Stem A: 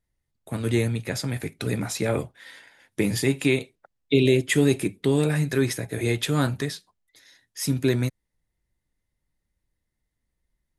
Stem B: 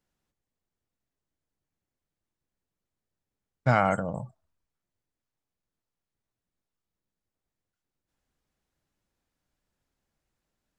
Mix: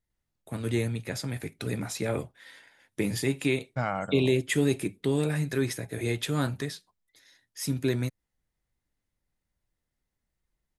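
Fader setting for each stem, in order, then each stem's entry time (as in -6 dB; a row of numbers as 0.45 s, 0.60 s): -5.0 dB, -7.5 dB; 0.00 s, 0.10 s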